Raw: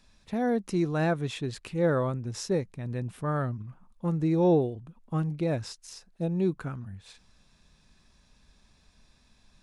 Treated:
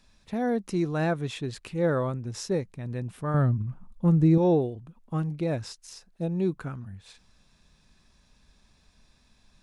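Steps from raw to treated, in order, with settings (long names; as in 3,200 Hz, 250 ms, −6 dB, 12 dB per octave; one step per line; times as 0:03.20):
0:03.34–0:04.38: low-shelf EQ 280 Hz +11 dB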